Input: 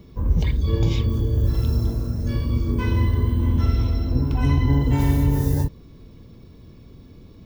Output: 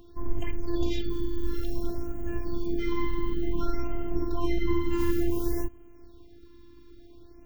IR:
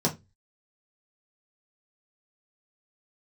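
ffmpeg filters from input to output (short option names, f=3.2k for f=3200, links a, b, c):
-af "afftfilt=real='hypot(re,im)*cos(PI*b)':imag='0':win_size=512:overlap=0.75,equalizer=f=8.7k:w=0.47:g=-3,afftfilt=real='re*(1-between(b*sr/1024,540*pow(4600/540,0.5+0.5*sin(2*PI*0.56*pts/sr))/1.41,540*pow(4600/540,0.5+0.5*sin(2*PI*0.56*pts/sr))*1.41))':imag='im*(1-between(b*sr/1024,540*pow(4600/540,0.5+0.5*sin(2*PI*0.56*pts/sr))/1.41,540*pow(4600/540,0.5+0.5*sin(2*PI*0.56*pts/sr))*1.41))':win_size=1024:overlap=0.75"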